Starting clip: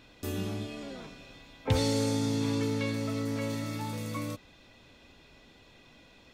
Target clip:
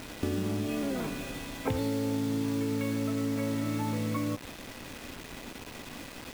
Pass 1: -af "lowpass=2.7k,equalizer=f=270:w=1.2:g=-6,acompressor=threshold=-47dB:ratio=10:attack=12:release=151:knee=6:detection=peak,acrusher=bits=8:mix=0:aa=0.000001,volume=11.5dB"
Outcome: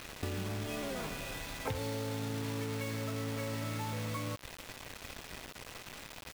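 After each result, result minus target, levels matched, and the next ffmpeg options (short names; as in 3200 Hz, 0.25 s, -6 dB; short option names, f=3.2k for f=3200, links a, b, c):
250 Hz band -5.0 dB; compressor: peak gain reduction +4.5 dB
-af "lowpass=2.7k,equalizer=f=270:w=1.2:g=4.5,acompressor=threshold=-47dB:ratio=10:attack=12:release=151:knee=6:detection=peak,acrusher=bits=8:mix=0:aa=0.000001,volume=11.5dB"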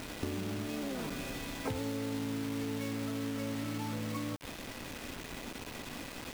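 compressor: peak gain reduction +6.5 dB
-af "lowpass=2.7k,equalizer=f=270:w=1.2:g=4.5,acompressor=threshold=-40dB:ratio=10:attack=12:release=151:knee=6:detection=peak,acrusher=bits=8:mix=0:aa=0.000001,volume=11.5dB"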